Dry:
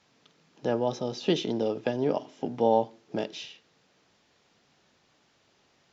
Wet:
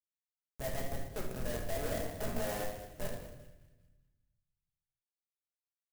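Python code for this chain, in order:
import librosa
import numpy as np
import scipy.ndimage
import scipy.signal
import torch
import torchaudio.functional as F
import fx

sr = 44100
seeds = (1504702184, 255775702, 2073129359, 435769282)

y = fx.wiener(x, sr, points=15)
y = fx.doppler_pass(y, sr, speed_mps=33, closest_m=4.4, pass_at_s=2.25)
y = fx.double_bandpass(y, sr, hz=1200.0, octaves=1.8)
y = fx.schmitt(y, sr, flips_db=-54.0)
y = fx.echo_wet_highpass(y, sr, ms=198, feedback_pct=40, hz=1600.0, wet_db=-13.0)
y = fx.room_shoebox(y, sr, seeds[0], volume_m3=470.0, walls='mixed', distance_m=1.4)
y = fx.clock_jitter(y, sr, seeds[1], jitter_ms=0.064)
y = y * librosa.db_to_amplitude(11.0)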